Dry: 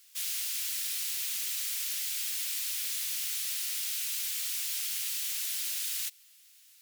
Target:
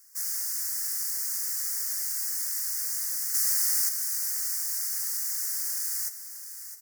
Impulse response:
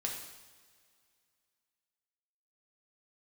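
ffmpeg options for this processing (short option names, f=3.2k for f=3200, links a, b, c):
-filter_complex "[0:a]asettb=1/sr,asplit=3[a][b][c];[a]atrim=end=3.344[d];[b]atrim=start=3.34:end=3.89,asetpts=PTS-STARTPTS,afade=t=in:d=0.004:c=qsin,afade=t=out:st=0.546:d=0.004:c=qsin,acontrast=53[e];[c]atrim=start=3.886[f];[d][e]acrossfade=d=0.004:c1=hsin:c2=qsin[g];[g][f]acrossfade=d=0.004:c1=qsin:c2=hsin,asuperstop=centerf=3100:order=8:qfactor=1,aecho=1:1:660|1320|1980|2640:0.282|0.0958|0.0326|0.0111,volume=3.5dB"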